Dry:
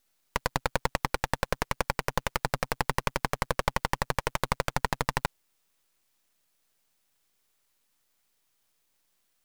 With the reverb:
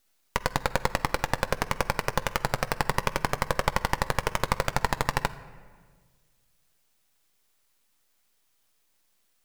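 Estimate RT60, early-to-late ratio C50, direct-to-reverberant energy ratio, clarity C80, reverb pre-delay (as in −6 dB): 1.6 s, 15.5 dB, 11.5 dB, 17.0 dB, 9 ms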